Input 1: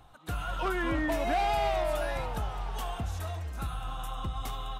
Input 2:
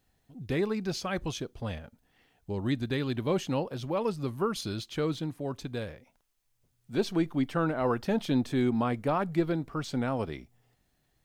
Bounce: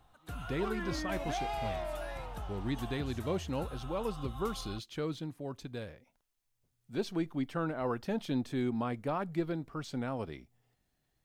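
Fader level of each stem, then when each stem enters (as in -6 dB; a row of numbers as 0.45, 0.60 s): -8.5, -6.0 dB; 0.00, 0.00 s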